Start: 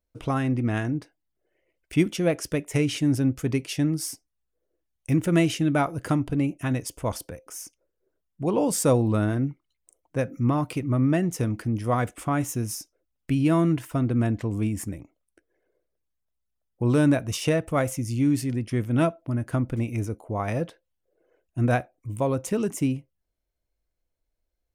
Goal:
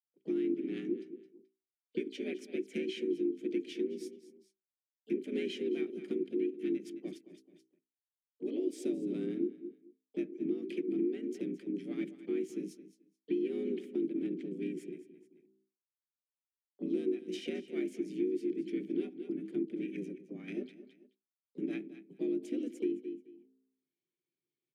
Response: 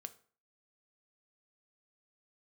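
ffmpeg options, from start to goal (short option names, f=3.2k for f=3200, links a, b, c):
-filter_complex "[0:a]asplit=3[a][b][c];[a]bandpass=f=270:t=q:w=8,volume=0dB[d];[b]bandpass=f=2.29k:t=q:w=8,volume=-6dB[e];[c]bandpass=f=3.01k:t=q:w=8,volume=-9dB[f];[d][e][f]amix=inputs=3:normalize=0,agate=range=-52dB:threshold=-48dB:ratio=16:detection=peak,asplit=2[g][h];[h]aecho=0:1:216|432:0.168|0.0319[i];[g][i]amix=inputs=2:normalize=0,acompressor=threshold=-31dB:ratio=8,asplit=4[j][k][l][m];[k]asetrate=29433,aresample=44100,atempo=1.49831,volume=-15dB[n];[l]asetrate=35002,aresample=44100,atempo=1.25992,volume=-9dB[o];[m]asetrate=58866,aresample=44100,atempo=0.749154,volume=-16dB[p];[j][n][o][p]amix=inputs=4:normalize=0,highpass=55,equalizer=f=860:t=o:w=2.9:g=-11.5,bandreject=f=60:t=h:w=6,bandreject=f=120:t=h:w=6,bandreject=f=180:t=h:w=6,bandreject=f=240:t=h:w=6,bandreject=f=300:t=h:w=6,bandreject=f=360:t=h:w=6,areverse,acompressor=mode=upward:threshold=-58dB:ratio=2.5,areverse,afreqshift=82,lowshelf=f=86:g=11,volume=4.5dB"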